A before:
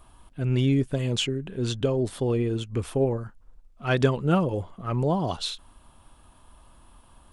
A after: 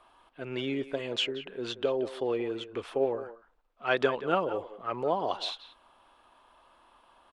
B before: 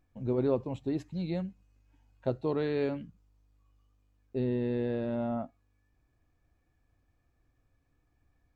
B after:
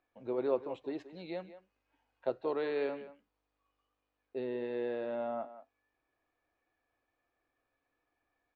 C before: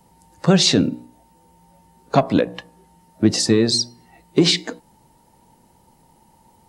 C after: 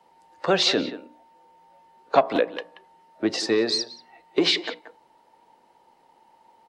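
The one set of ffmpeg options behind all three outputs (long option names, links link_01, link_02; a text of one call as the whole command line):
ffmpeg -i in.wav -filter_complex "[0:a]acrossover=split=350 4400:gain=0.0708 1 0.126[link_01][link_02][link_03];[link_01][link_02][link_03]amix=inputs=3:normalize=0,asplit=2[link_04][link_05];[link_05]adelay=180,highpass=300,lowpass=3400,asoftclip=type=hard:threshold=-12dB,volume=-13dB[link_06];[link_04][link_06]amix=inputs=2:normalize=0" out.wav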